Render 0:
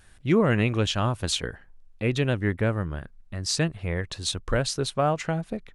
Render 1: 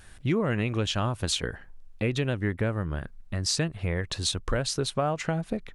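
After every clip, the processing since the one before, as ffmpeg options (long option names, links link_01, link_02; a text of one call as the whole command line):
ffmpeg -i in.wav -af "acompressor=threshold=-30dB:ratio=3,volume=4.5dB" out.wav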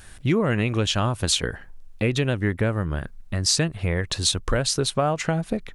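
ffmpeg -i in.wav -af "highshelf=frequency=5800:gain=4.5,volume=4.5dB" out.wav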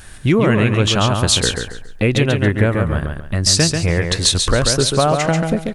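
ffmpeg -i in.wav -af "aecho=1:1:139|278|417|556:0.562|0.163|0.0473|0.0137,volume=6.5dB" out.wav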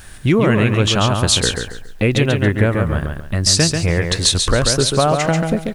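ffmpeg -i in.wav -af "acrusher=bits=8:mix=0:aa=0.000001" out.wav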